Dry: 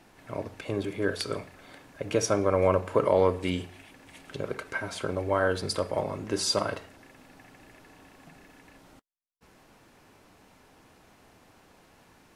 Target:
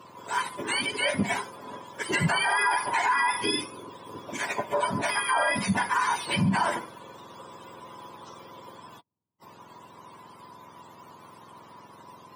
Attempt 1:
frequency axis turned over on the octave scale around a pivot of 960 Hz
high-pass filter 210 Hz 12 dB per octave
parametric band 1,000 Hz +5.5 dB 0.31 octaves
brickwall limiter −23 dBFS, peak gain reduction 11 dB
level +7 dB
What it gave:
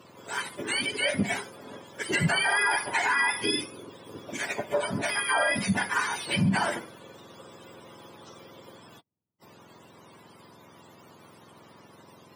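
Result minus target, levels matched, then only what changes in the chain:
1,000 Hz band −4.0 dB
change: parametric band 1,000 Hz +17.5 dB 0.31 octaves

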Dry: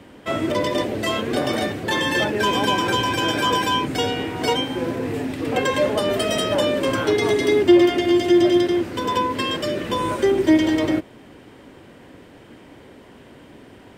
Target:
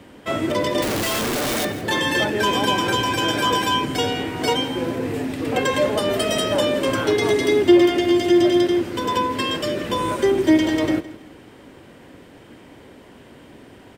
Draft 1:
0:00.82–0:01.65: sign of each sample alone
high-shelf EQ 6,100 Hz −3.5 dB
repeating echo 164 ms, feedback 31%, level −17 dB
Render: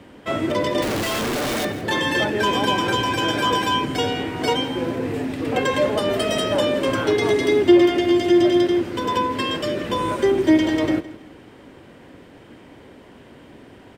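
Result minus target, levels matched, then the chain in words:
8,000 Hz band −3.5 dB
0:00.82–0:01.65: sign of each sample alone
high-shelf EQ 6,100 Hz +3 dB
repeating echo 164 ms, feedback 31%, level −17 dB

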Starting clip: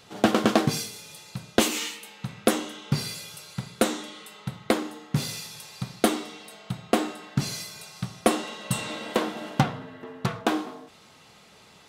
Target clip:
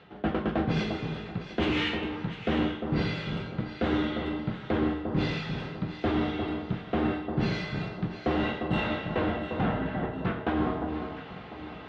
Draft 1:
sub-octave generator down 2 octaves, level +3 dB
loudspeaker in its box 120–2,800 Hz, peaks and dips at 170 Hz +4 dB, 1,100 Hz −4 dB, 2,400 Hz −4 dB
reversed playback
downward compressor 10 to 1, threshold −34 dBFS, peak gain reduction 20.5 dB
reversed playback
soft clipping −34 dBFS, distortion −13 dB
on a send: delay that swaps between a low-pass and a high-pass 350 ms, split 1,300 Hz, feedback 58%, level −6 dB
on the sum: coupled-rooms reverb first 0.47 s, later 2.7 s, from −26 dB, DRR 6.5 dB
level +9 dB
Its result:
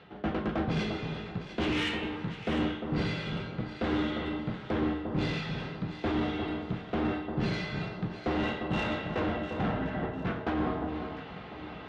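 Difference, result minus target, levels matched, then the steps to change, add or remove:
soft clipping: distortion +15 dB
change: soft clipping −23.5 dBFS, distortion −28 dB

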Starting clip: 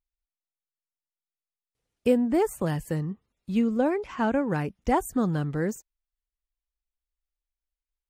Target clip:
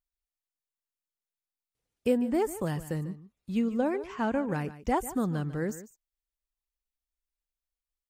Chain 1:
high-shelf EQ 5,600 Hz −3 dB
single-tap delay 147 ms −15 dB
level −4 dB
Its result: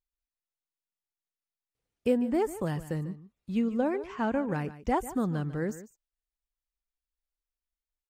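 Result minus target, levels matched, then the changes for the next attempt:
8,000 Hz band −4.0 dB
change: high-shelf EQ 5,600 Hz +3 dB

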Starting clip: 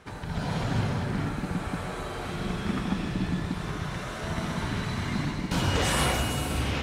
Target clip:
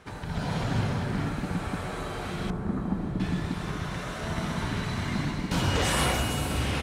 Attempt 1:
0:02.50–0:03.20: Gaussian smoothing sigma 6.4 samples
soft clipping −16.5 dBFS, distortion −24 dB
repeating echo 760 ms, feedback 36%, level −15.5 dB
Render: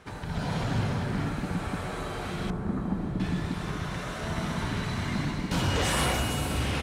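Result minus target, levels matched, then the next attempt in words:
soft clipping: distortion +19 dB
0:02.50–0:03.20: Gaussian smoothing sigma 6.4 samples
soft clipping −6 dBFS, distortion −43 dB
repeating echo 760 ms, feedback 36%, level −15.5 dB

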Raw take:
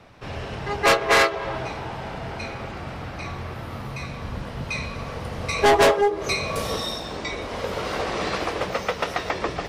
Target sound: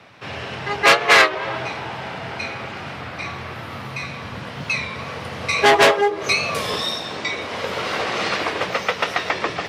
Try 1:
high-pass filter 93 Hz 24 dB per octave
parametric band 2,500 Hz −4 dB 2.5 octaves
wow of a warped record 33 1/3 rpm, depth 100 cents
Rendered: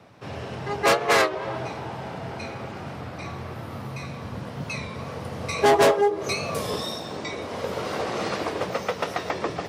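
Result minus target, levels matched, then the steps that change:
2,000 Hz band −4.0 dB
change: parametric band 2,500 Hz +7.5 dB 2.5 octaves

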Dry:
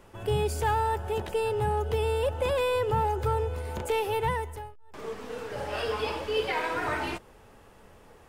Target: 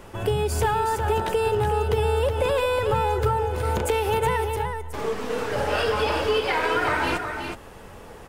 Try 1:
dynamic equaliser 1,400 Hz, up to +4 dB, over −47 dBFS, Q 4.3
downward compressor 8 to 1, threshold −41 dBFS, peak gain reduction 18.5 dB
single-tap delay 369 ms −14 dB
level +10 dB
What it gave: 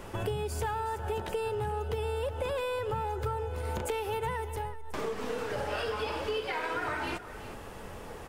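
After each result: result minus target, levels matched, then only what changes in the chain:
downward compressor: peak gain reduction +9.5 dB; echo-to-direct −7.5 dB
change: downward compressor 8 to 1, threshold −30 dBFS, peak gain reduction 9 dB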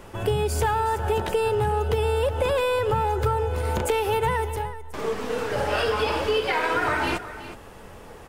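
echo-to-direct −7.5 dB
change: single-tap delay 369 ms −6.5 dB

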